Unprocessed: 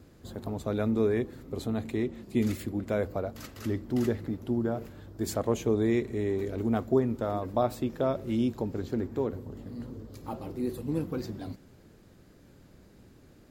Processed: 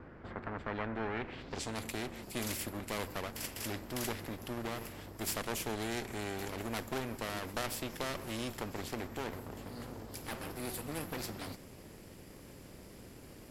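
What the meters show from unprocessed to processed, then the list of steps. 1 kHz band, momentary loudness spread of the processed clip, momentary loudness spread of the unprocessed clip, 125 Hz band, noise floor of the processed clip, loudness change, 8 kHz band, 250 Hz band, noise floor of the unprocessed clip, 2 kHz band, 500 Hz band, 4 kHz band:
-3.5 dB, 15 LU, 14 LU, -10.0 dB, -53 dBFS, -8.5 dB, +5.0 dB, -12.0 dB, -56 dBFS, +3.0 dB, -11.5 dB, +5.0 dB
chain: minimum comb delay 0.38 ms; low-pass sweep 1500 Hz -> 12000 Hz, 1.12–1.83; spectral compressor 2:1; gain -5.5 dB

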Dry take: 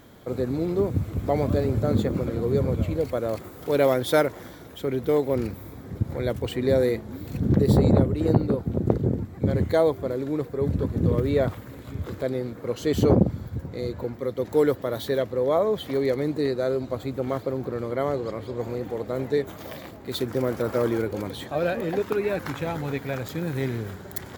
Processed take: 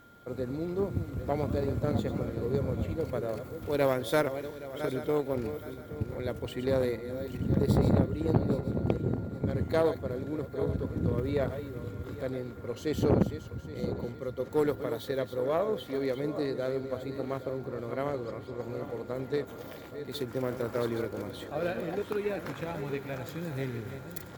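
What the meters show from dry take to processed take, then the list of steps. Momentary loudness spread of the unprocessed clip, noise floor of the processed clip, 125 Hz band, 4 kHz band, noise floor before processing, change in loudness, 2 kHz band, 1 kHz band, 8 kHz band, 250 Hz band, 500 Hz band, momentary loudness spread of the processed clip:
11 LU, -45 dBFS, -6.5 dB, -6.5 dB, -42 dBFS, -6.5 dB, -5.5 dB, -5.5 dB, n/a, -6.5 dB, -6.5 dB, 10 LU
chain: regenerating reverse delay 0.41 s, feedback 55%, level -9 dB; whine 1400 Hz -48 dBFS; added harmonics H 6 -20 dB, 7 -32 dB, 8 -24 dB, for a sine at -4.5 dBFS; gain -6.5 dB

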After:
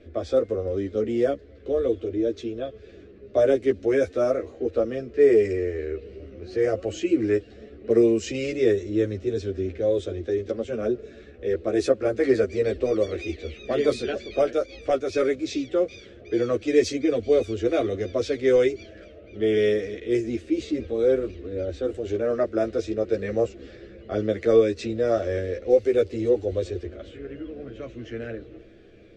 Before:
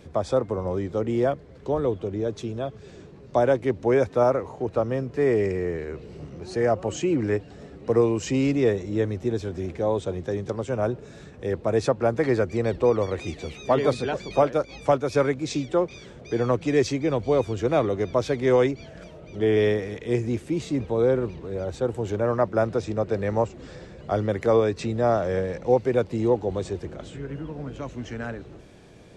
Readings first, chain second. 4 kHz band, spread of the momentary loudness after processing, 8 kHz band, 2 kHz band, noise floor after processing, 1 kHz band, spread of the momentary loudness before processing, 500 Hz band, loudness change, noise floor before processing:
+0.5 dB, 14 LU, -1.5 dB, -1.5 dB, -47 dBFS, -8.0 dB, 13 LU, +1.0 dB, +0.5 dB, -46 dBFS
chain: fixed phaser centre 380 Hz, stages 4; low-pass opened by the level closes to 2500 Hz, open at -17.5 dBFS; chorus voices 4, 0.11 Hz, delay 12 ms, depth 3.2 ms; gain +5 dB

